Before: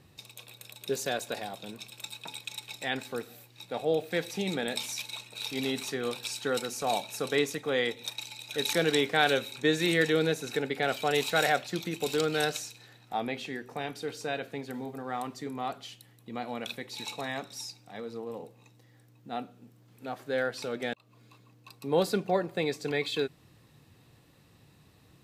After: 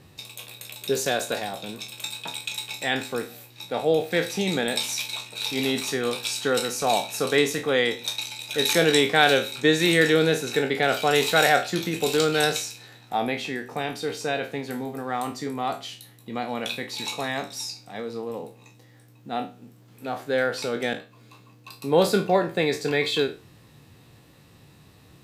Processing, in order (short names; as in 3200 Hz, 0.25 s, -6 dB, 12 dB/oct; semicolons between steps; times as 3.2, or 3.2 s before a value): spectral trails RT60 0.31 s; gain +6 dB